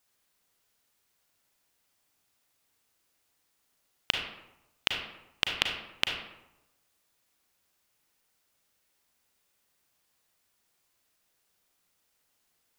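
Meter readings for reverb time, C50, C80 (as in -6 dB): 0.90 s, 4.0 dB, 7.0 dB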